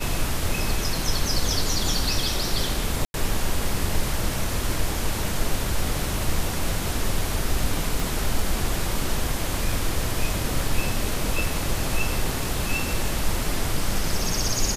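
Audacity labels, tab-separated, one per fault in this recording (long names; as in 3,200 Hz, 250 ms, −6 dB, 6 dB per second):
3.050000	3.140000	drop-out 91 ms
8.000000	8.000000	click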